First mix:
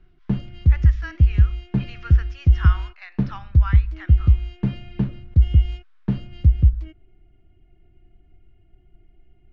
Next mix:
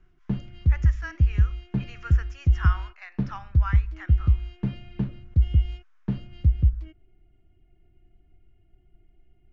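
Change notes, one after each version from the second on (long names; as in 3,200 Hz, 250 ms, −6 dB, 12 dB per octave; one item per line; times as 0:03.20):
speech: remove low-pass with resonance 4,100 Hz, resonance Q 2.4
background −5.0 dB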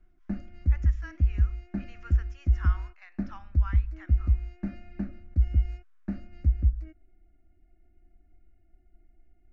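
speech −8.5 dB
background: add phaser with its sweep stopped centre 660 Hz, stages 8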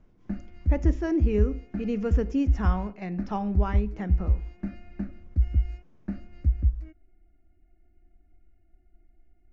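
speech: remove four-pole ladder high-pass 1,200 Hz, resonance 50%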